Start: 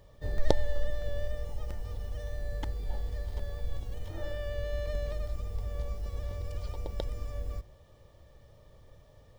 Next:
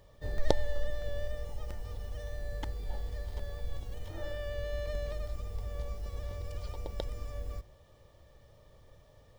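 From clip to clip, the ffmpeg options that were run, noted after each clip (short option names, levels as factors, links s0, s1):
-af "lowshelf=f=430:g=-3"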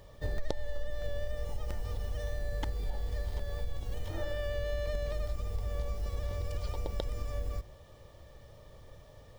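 -af "acompressor=threshold=0.0178:ratio=4,volume=1.88"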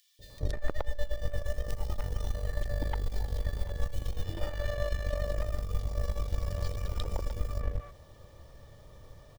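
-filter_complex "[0:a]acrossover=split=580|2700[s0][s1][s2];[s0]adelay=190[s3];[s1]adelay=300[s4];[s3][s4][s2]amix=inputs=3:normalize=0,aeval=exprs='0.133*(cos(1*acos(clip(val(0)/0.133,-1,1)))-cos(1*PI/2))+0.0119*(cos(3*acos(clip(val(0)/0.133,-1,1)))-cos(3*PI/2))+0.0237*(cos(4*acos(clip(val(0)/0.133,-1,1)))-cos(4*PI/2))':c=same,volume=1.68"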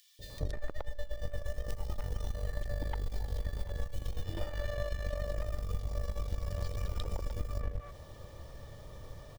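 -af "acompressor=threshold=0.02:ratio=6,volume=1.58"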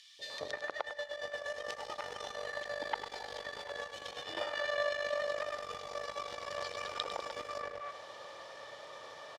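-filter_complex "[0:a]highpass=740,lowpass=4800,asplit=2[s0][s1];[s1]aecho=0:1:101|202|303|404|505:0.282|0.135|0.0649|0.0312|0.015[s2];[s0][s2]amix=inputs=2:normalize=0,volume=3.16"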